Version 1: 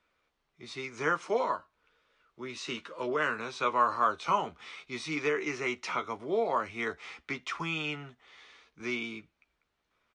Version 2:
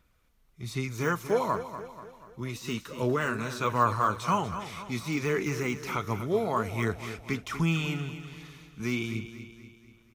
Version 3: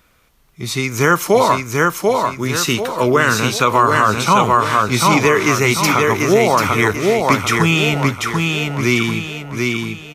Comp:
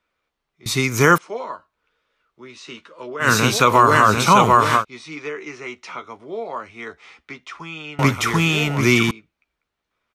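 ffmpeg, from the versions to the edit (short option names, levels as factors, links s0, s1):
-filter_complex "[2:a]asplit=3[s0][s1][s2];[0:a]asplit=4[s3][s4][s5][s6];[s3]atrim=end=0.662[s7];[s0]atrim=start=0.658:end=1.182[s8];[s4]atrim=start=1.178:end=3.29[s9];[s1]atrim=start=3.19:end=4.85[s10];[s5]atrim=start=4.75:end=7.992[s11];[s2]atrim=start=7.988:end=9.112[s12];[s6]atrim=start=9.108[s13];[s7][s8]acrossfade=d=0.004:c1=hsin:c2=hsin[s14];[s14][s9]acrossfade=d=0.004:c1=hsin:c2=hsin[s15];[s15][s10]acrossfade=d=0.1:c1=tri:c2=tri[s16];[s16][s11]acrossfade=d=0.1:c1=tri:c2=tri[s17];[s17][s12]acrossfade=d=0.004:c1=hsin:c2=hsin[s18];[s18][s13]acrossfade=d=0.004:c1=hsin:c2=hsin"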